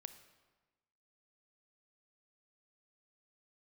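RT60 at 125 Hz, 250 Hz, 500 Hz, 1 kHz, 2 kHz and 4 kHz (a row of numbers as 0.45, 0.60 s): 1.3, 1.3, 1.2, 1.2, 1.1, 0.95 s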